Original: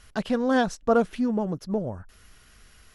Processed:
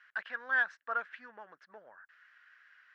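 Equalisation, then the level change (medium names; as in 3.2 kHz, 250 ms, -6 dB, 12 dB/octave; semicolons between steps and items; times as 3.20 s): ladder band-pass 1.8 kHz, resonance 70%; distance through air 53 m; treble shelf 2.3 kHz -9.5 dB; +8.5 dB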